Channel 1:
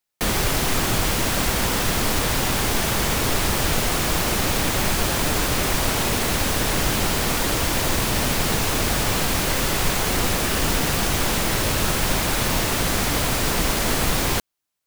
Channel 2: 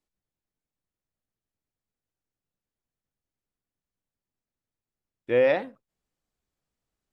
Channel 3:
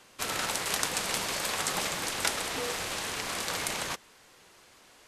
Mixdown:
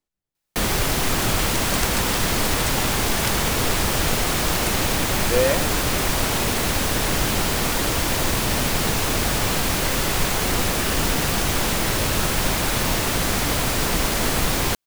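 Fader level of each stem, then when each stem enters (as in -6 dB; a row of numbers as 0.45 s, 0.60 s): 0.0 dB, +0.5 dB, -0.5 dB; 0.35 s, 0.00 s, 1.00 s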